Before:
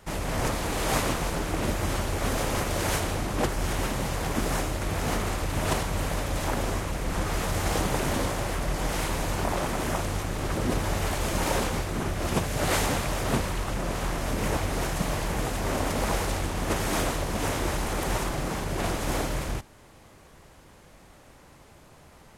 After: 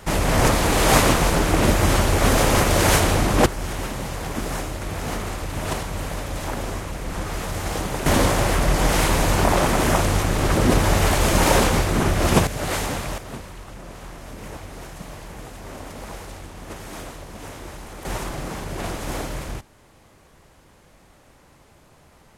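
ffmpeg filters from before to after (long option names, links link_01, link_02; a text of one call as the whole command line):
ffmpeg -i in.wav -af "asetnsamples=nb_out_samples=441:pad=0,asendcmd='3.46 volume volume 0dB;8.06 volume volume 9.5dB;12.47 volume volume 0dB;13.18 volume volume -9dB;18.05 volume volume -0.5dB',volume=10dB" out.wav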